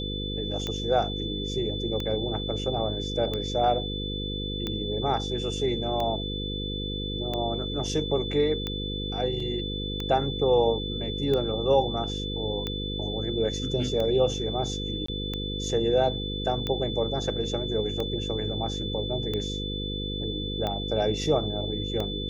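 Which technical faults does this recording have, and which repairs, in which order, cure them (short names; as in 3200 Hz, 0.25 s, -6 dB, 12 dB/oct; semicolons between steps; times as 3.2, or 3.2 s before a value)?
buzz 50 Hz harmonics 10 -33 dBFS
tick 45 rpm -17 dBFS
tone 3500 Hz -34 dBFS
9.4 gap 3.5 ms
15.06–15.08 gap 24 ms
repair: de-click; notch 3500 Hz, Q 30; de-hum 50 Hz, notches 10; interpolate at 9.4, 3.5 ms; interpolate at 15.06, 24 ms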